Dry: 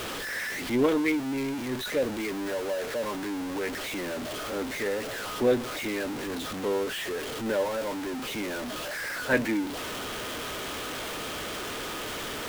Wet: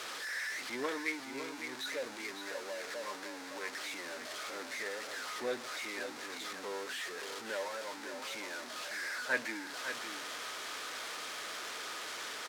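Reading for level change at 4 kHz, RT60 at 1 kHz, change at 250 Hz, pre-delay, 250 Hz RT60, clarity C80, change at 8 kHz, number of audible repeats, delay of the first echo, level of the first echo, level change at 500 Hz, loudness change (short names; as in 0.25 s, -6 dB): -5.5 dB, none, -17.5 dB, none, none, none, -5.0 dB, 1, 0.556 s, -8.5 dB, -13.0 dB, -9.0 dB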